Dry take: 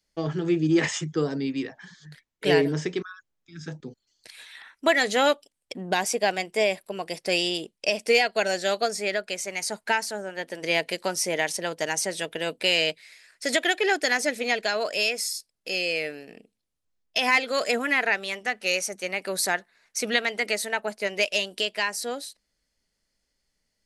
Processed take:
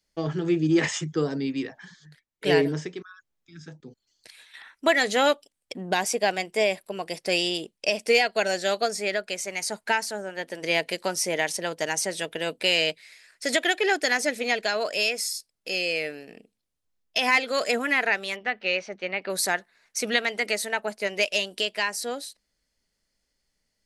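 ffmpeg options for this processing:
ffmpeg -i in.wav -filter_complex "[0:a]asettb=1/sr,asplit=3[link_01][link_02][link_03];[link_01]atrim=end=1.834[link_04];[link_02]atrim=start=1.83:end=4.54,asetpts=PTS-STARTPTS,afade=type=in:duration=0.004:curve=qsin,afade=type=out:start_time=2.706:duration=0.004:curve=qsin,tremolo=f=1.3:d=0.6[link_05];[link_03]atrim=start=4.536[link_06];[link_04][link_05]acrossfade=duration=0.004:curve1=hsin:curve2=qsin[link_07];[link_07][link_06]acrossfade=duration=0.004:curve1=qsin:curve2=hsin,asettb=1/sr,asplit=3[link_08][link_09][link_10];[link_08]atrim=end=18.364[link_11];[link_09]atrim=start=18.36:end=19.3,asetpts=PTS-STARTPTS,afade=type=in:duration=0.004:curve=qsin,afade=type=out:start_time=0.936:duration=0.004:curve=qsin,lowpass=frequency=3800:width=0.5412,lowpass=frequency=3800:width=1.3066[link_12];[link_10]atrim=start=19.296[link_13];[link_11][link_12]acrossfade=duration=0.004:curve1=hsin:curve2=qsin[link_14];[link_14][link_13]acrossfade=duration=0.004:curve1=qsin:curve2=hsin" out.wav

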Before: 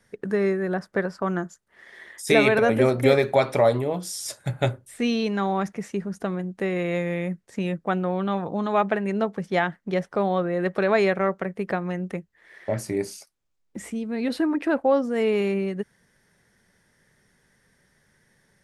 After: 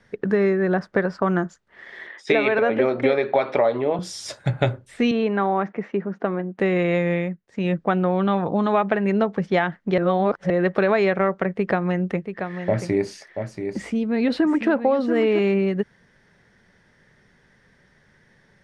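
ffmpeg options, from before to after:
ffmpeg -i in.wav -filter_complex "[0:a]asettb=1/sr,asplit=3[link_01][link_02][link_03];[link_01]atrim=end=2.074[link_04];[link_02]atrim=start=2.07:end=3.99,asetpts=PTS-STARTPTS,afade=type=in:duration=0.004:curve=qsin,afade=type=out:start_time=1.916:duration=0.004:curve=qsin,highpass=250,lowpass=3800[link_05];[link_03]atrim=start=3.986[link_06];[link_04][link_05]acrossfade=duration=0.004:curve1=hsin:curve2=qsin[link_07];[link_07][link_06]acrossfade=duration=0.004:curve1=qsin:curve2=hsin,asettb=1/sr,asplit=3[link_08][link_09][link_10];[link_08]atrim=end=5.114[link_11];[link_09]atrim=start=5.11:end=6.59,asetpts=PTS-STARTPTS,afade=type=in:duration=0.004:curve=qsin,afade=type=out:start_time=1.476:duration=0.004:curve=qsin,highpass=240,lowpass=2100[link_12];[link_10]atrim=start=6.586[link_13];[link_11][link_12]acrossfade=duration=0.004:curve1=hsin:curve2=qsin[link_14];[link_14][link_13]acrossfade=duration=0.004:curve1=qsin:curve2=hsin,asettb=1/sr,asplit=3[link_15][link_16][link_17];[link_15]atrim=end=11.554[link_18];[link_16]atrim=start=11.55:end=15.39,asetpts=PTS-STARTPTS,afade=type=in:duration=0.004:curve=qsin,afade=type=out:start_time=3.836:duration=0.004:curve=qsin,aecho=1:1:683:0.355,atrim=end_sample=169344[link_19];[link_17]atrim=start=15.386[link_20];[link_18][link_19]acrossfade=duration=0.004:curve1=hsin:curve2=qsin[link_21];[link_21][link_20]acrossfade=duration=0.004:curve1=qsin:curve2=hsin,asplit=5[link_22][link_23][link_24][link_25][link_26];[link_22]atrim=end=7.38,asetpts=PTS-STARTPTS,afade=type=out:start_time=7.14:duration=0.24:silence=0.223872[link_27];[link_23]atrim=start=7.38:end=7.49,asetpts=PTS-STARTPTS,volume=-13dB[link_28];[link_24]atrim=start=7.49:end=9.982,asetpts=PTS-STARTPTS,afade=type=in:duration=0.24:silence=0.223872[link_29];[link_25]atrim=start=9.978:end=10.502,asetpts=PTS-STARTPTS,areverse[link_30];[link_26]atrim=start=10.498[link_31];[link_27][link_28][link_29]concat=n=3:v=0:a=1[link_32];[link_32][link_30]acrossfade=duration=0.004:curve1=hsin:curve2=hsin[link_33];[link_33][link_31]acrossfade=duration=0.004:curve1=hsin:curve2=hsin,lowpass=4200,acompressor=threshold=-22dB:ratio=6,volume=6.5dB" out.wav

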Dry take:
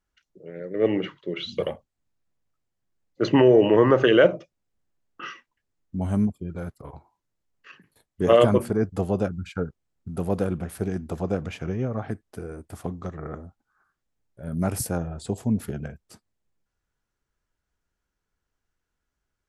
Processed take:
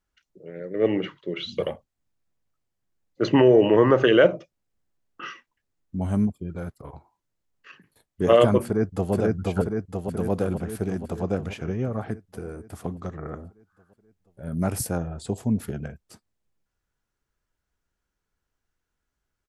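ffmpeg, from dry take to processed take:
ffmpeg -i in.wav -filter_complex "[0:a]asplit=2[link_01][link_02];[link_02]afade=type=in:start_time=8.64:duration=0.01,afade=type=out:start_time=9.13:duration=0.01,aecho=0:1:480|960|1440|1920|2400|2880|3360|3840|4320|4800|5280:0.891251|0.579313|0.376554|0.24476|0.159094|0.103411|0.0672172|0.0436912|0.0283992|0.0184595|0.0119987[link_03];[link_01][link_03]amix=inputs=2:normalize=0" out.wav

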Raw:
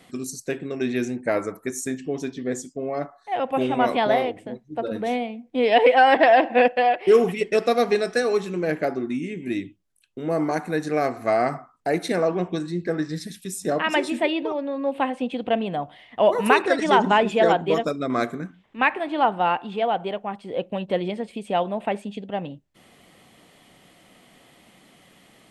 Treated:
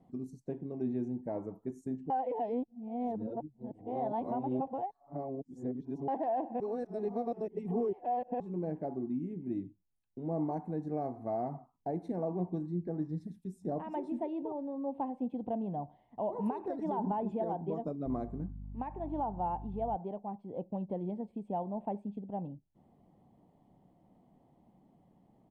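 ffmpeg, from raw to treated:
ffmpeg -i in.wav -filter_complex "[0:a]asettb=1/sr,asplit=3[link_01][link_02][link_03];[link_01]atrim=end=18.064[link_04];[link_02]atrim=start=18.06:end=19.96,asetpts=PTS-STARTPTS,afade=type=in:duration=0.004:curve=qsin,afade=type=out:start_time=1.896:duration=0.004:curve=qsin,aeval=exprs='val(0)+0.0141*(sin(2*PI*50*n/s)+sin(2*PI*2*50*n/s)/2+sin(2*PI*3*50*n/s)/3+sin(2*PI*4*50*n/s)/4+sin(2*PI*5*50*n/s)/5)':channel_layout=same[link_05];[link_03]atrim=start=19.956[link_06];[link_04][link_05]acrossfade=duration=0.004:curve1=hsin:curve2=qsin[link_07];[link_07][link_06]acrossfade=duration=0.004:curve1=qsin:curve2=hsin,asplit=5[link_08][link_09][link_10][link_11][link_12];[link_08]atrim=end=2.102[link_13];[link_09]atrim=start=2.098:end=6.082,asetpts=PTS-STARTPTS,areverse[link_14];[link_10]atrim=start=6.078:end=6.602[link_15];[link_11]atrim=start=6.598:end=8.402,asetpts=PTS-STARTPTS,areverse[link_16];[link_12]atrim=start=8.398[link_17];[link_13][link_14]acrossfade=duration=0.004:curve1=hsin:curve2=hsin[link_18];[link_18][link_15]acrossfade=duration=0.004:curve1=hsin:curve2=hsin[link_19];[link_19][link_16]acrossfade=duration=0.004:curve1=hsin:curve2=hsin[link_20];[link_20][link_17]acrossfade=duration=0.004:curve1=hsin:curve2=hsin,alimiter=limit=-13.5dB:level=0:latency=1:release=160,firequalizer=gain_entry='entry(170,0);entry(500,-9);entry(880,-3);entry(1300,-24);entry(2500,-30)':delay=0.05:min_phase=1,volume=-5.5dB" out.wav

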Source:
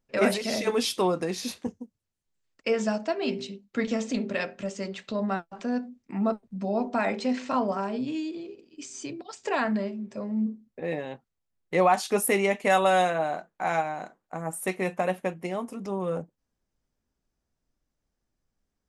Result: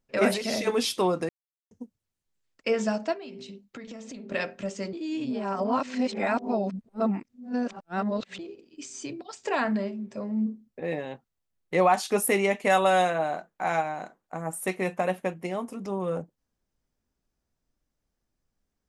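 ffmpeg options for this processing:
ffmpeg -i in.wav -filter_complex "[0:a]asettb=1/sr,asplit=3[link_01][link_02][link_03];[link_01]atrim=end=3.134[link_04];[link_02]atrim=start=3.13:end=4.32,asetpts=PTS-STARTPTS,afade=type=in:duration=0.004:curve=qsin,afade=type=out:start_time=1.186:duration=0.004:curve=qsin,acompressor=threshold=-38dB:ratio=8:attack=3.2:release=140:knee=1:detection=peak[link_05];[link_03]atrim=start=4.316[link_06];[link_04][link_05]acrossfade=duration=0.004:curve1=hsin:curve2=qsin[link_07];[link_07][link_06]acrossfade=duration=0.004:curve1=qsin:curve2=hsin,asplit=5[link_08][link_09][link_10][link_11][link_12];[link_08]atrim=end=1.29,asetpts=PTS-STARTPTS,afade=type=out:start_time=1.286:duration=0.004:curve=hsin[link_13];[link_09]atrim=start=1.29:end=1.71,asetpts=PTS-STARTPTS,volume=0[link_14];[link_10]atrim=start=1.71:end=4.932,asetpts=PTS-STARTPTS,afade=type=in:duration=0.004:curve=hsin[link_15];[link_11]atrim=start=4.928:end=8.392,asetpts=PTS-STARTPTS,areverse[link_16];[link_12]atrim=start=8.388[link_17];[link_13][link_14][link_15]concat=n=3:v=0:a=1[link_18];[link_18][link_16]acrossfade=duration=0.004:curve1=hsin:curve2=hsin[link_19];[link_19][link_17]acrossfade=duration=0.004:curve1=hsin:curve2=hsin" out.wav

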